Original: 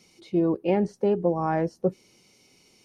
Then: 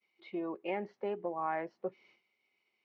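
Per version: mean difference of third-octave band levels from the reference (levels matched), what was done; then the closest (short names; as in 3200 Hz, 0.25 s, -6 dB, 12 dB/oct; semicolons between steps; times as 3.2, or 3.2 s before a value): 5.0 dB: expander -49 dBFS; low shelf 220 Hz -11.5 dB; compressor 1.5:1, threshold -33 dBFS, peak gain reduction 5 dB; speaker cabinet 170–3400 Hz, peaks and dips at 170 Hz -8 dB, 280 Hz -9 dB, 480 Hz -6 dB, 1100 Hz +3 dB, 2100 Hz +7 dB; gain -3 dB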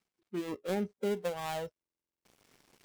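10.0 dB: switching dead time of 0.23 ms; spectral noise reduction 16 dB; reverse; upward compressor, threshold -32 dBFS; reverse; stuck buffer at 1.74, samples 2048, times 10; gain -9 dB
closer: first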